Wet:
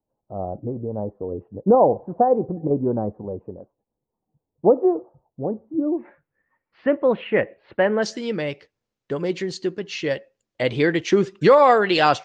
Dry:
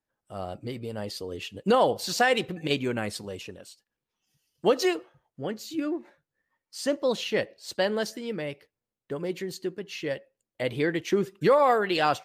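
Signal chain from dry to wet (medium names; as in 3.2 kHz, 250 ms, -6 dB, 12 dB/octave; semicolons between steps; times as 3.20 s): steep low-pass 910 Hz 36 dB/octave, from 5.97 s 2.4 kHz, from 8.02 s 7 kHz; trim +7 dB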